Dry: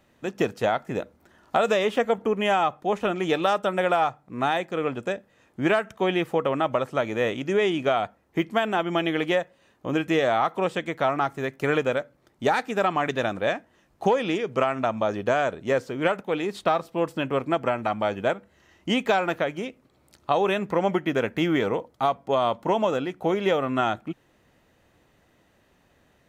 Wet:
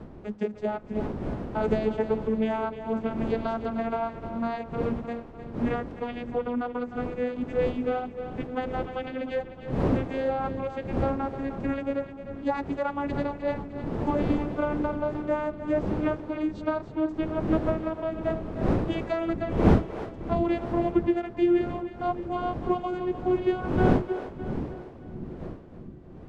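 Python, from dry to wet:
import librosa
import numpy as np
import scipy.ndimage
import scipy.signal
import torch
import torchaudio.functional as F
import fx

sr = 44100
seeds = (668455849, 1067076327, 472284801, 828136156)

y = fx.vocoder_glide(x, sr, note=56, semitones=11)
y = fx.dmg_wind(y, sr, seeds[0], corner_hz=330.0, level_db=-29.0)
y = fx.echo_split(y, sr, split_hz=340.0, low_ms=654, high_ms=306, feedback_pct=52, wet_db=-11.0)
y = y * 10.0 ** (-4.0 / 20.0)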